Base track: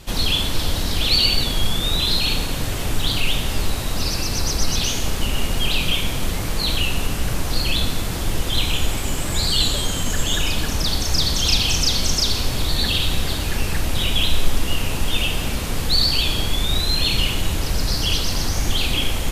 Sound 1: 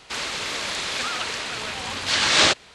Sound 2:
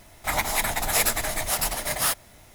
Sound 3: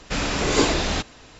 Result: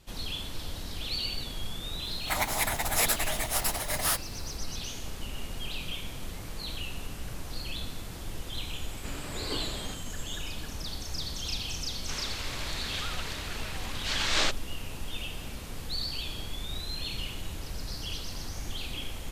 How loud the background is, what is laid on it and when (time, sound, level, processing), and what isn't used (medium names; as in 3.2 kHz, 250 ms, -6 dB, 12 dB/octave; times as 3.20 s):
base track -16 dB
2.03 s: add 2 -4 dB
8.93 s: add 3 -17.5 dB + resampled via 11.025 kHz
11.98 s: add 1 -10.5 dB